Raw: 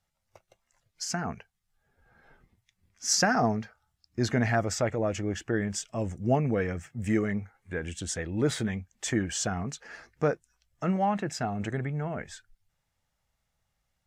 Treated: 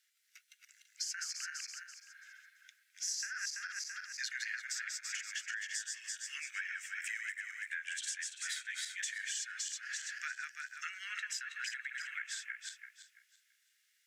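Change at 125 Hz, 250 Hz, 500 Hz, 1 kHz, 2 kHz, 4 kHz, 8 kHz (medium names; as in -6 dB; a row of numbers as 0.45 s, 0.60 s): under -40 dB, under -40 dB, under -40 dB, -20.5 dB, -2.0 dB, -4.0 dB, -4.0 dB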